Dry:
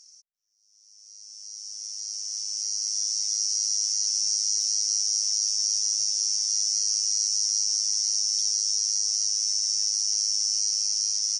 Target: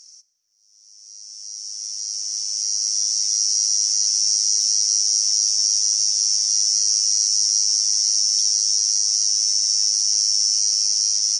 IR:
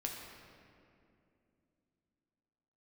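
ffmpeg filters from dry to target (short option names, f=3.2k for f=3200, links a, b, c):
-filter_complex "[0:a]asplit=2[a][b];[1:a]atrim=start_sample=2205,asetrate=37044,aresample=44100[c];[b][c]afir=irnorm=-1:irlink=0,volume=-11dB[d];[a][d]amix=inputs=2:normalize=0,volume=4.5dB"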